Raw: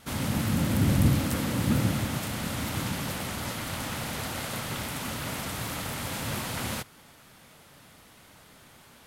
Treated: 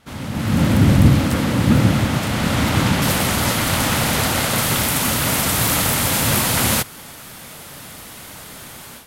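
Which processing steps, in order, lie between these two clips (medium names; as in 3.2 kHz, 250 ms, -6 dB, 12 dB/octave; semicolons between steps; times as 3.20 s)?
treble shelf 7 kHz -9.5 dB, from 3.02 s +2 dB, from 4.58 s +8 dB; level rider gain up to 15 dB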